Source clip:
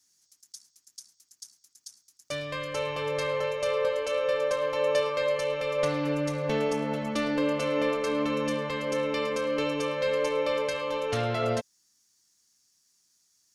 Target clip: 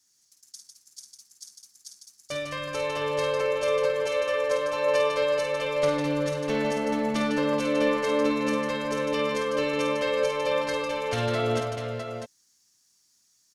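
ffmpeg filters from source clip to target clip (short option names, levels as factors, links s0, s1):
-af "aecho=1:1:46|51|151|213|427|649:0.141|0.473|0.501|0.15|0.335|0.398"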